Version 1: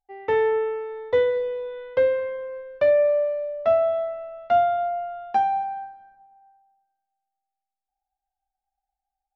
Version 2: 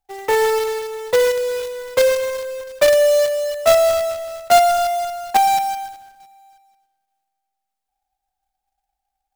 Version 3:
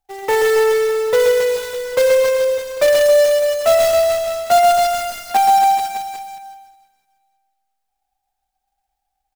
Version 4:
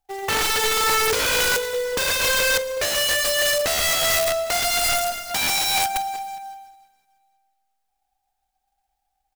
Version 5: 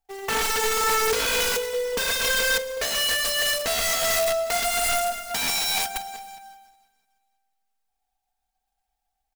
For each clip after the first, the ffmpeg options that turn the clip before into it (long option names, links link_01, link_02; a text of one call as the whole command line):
ffmpeg -i in.wav -filter_complex "[0:a]acrossover=split=400|1900[link_01][link_02][link_03];[link_01]acompressor=threshold=-43dB:ratio=10[link_04];[link_04][link_02][link_03]amix=inputs=3:normalize=0,acrusher=bits=2:mode=log:mix=0:aa=0.000001,volume=6.5dB" out.wav
ffmpeg -i in.wav -af "aecho=1:1:130|273|430.3|603.3|793.7:0.631|0.398|0.251|0.158|0.1,acontrast=26,volume=-4dB" out.wav
ffmpeg -i in.wav -af "aeval=exprs='(mod(6.31*val(0)+1,2)-1)/6.31':channel_layout=same" out.wav
ffmpeg -i in.wav -af "aecho=1:1:4.4:0.53,volume=-4dB" out.wav